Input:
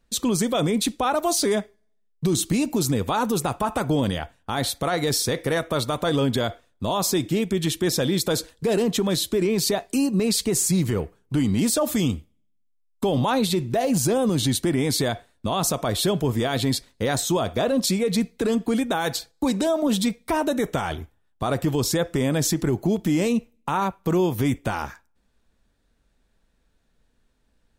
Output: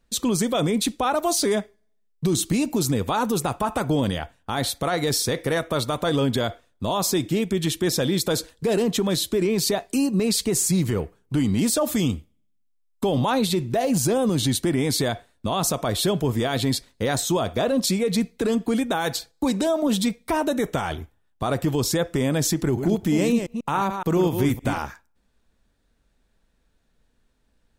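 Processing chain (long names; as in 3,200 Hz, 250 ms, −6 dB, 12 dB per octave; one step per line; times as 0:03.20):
0:22.62–0:24.78: delay that plays each chunk backwards 141 ms, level −6.5 dB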